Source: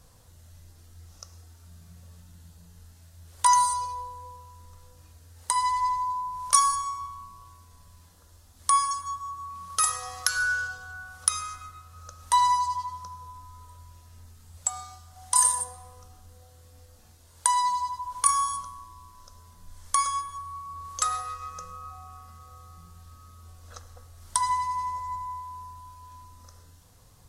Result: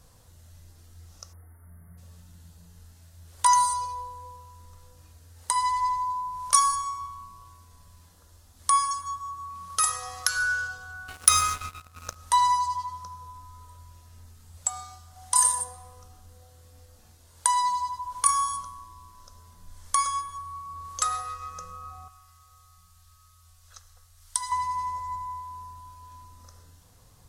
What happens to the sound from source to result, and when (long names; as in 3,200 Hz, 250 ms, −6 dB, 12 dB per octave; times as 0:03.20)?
0:01.33–0:01.98: time-frequency box erased 2,200–9,200 Hz
0:11.08–0:12.16: leveller curve on the samples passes 3
0:22.08–0:24.52: guitar amp tone stack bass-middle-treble 10-0-10